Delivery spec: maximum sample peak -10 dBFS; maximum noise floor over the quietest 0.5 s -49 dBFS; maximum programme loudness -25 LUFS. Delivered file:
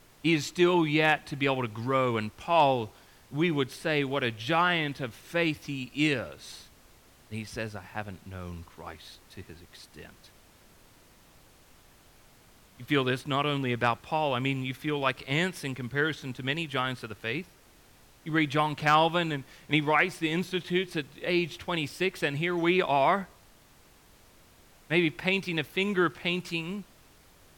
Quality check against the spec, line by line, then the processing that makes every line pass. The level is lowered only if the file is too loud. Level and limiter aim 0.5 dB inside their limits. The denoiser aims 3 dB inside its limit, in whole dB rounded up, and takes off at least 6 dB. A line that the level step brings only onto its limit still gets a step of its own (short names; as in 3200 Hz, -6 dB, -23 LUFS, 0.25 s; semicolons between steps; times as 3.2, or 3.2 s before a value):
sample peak -11.0 dBFS: OK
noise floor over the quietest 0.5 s -58 dBFS: OK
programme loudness -28.0 LUFS: OK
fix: none